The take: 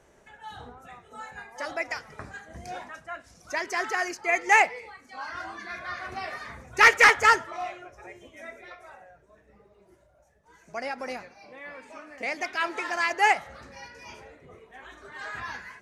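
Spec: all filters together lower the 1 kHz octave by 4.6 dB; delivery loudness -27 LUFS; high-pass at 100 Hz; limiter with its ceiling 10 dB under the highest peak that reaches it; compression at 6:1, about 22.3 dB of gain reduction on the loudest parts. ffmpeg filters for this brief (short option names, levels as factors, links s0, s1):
-af "highpass=100,equalizer=f=1000:t=o:g=-6.5,acompressor=threshold=0.0112:ratio=6,volume=9.44,alimiter=limit=0.15:level=0:latency=1"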